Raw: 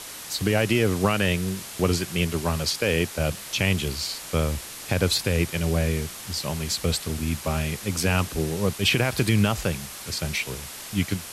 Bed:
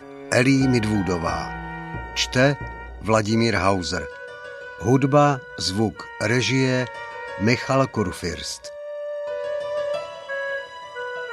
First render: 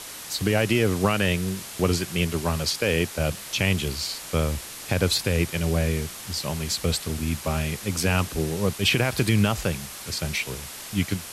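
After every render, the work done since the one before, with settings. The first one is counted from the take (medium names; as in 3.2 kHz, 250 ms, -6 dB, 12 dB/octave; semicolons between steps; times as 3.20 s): no audible change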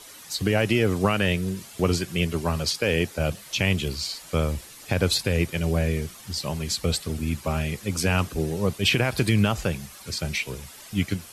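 noise reduction 10 dB, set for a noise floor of -39 dBFS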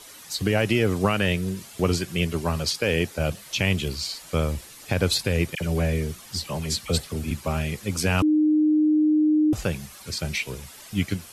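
5.55–7.31 s: phase dispersion lows, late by 57 ms, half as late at 1.7 kHz; 8.22–9.53 s: bleep 306 Hz -16 dBFS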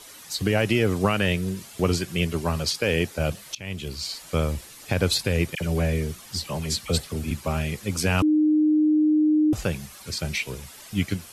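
3.55–4.14 s: fade in, from -23.5 dB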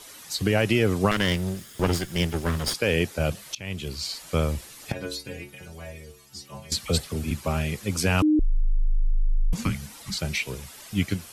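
1.11–2.74 s: comb filter that takes the minimum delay 0.6 ms; 4.92–6.72 s: inharmonic resonator 66 Hz, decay 0.57 s, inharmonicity 0.008; 8.39–10.18 s: frequency shift -280 Hz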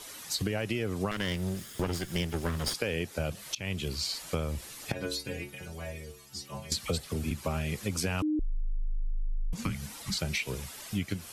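compression 6:1, threshold -28 dBFS, peak gain reduction 11.5 dB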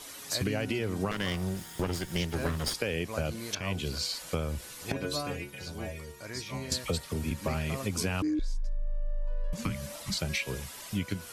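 add bed -21 dB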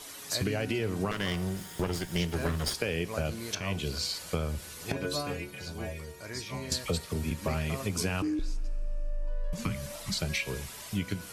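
two-slope reverb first 0.33 s, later 4.1 s, from -18 dB, DRR 13 dB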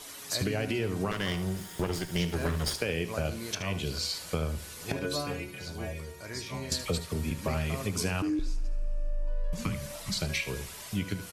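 delay 75 ms -13 dB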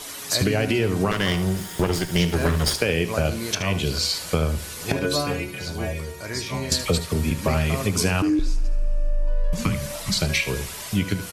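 trim +9 dB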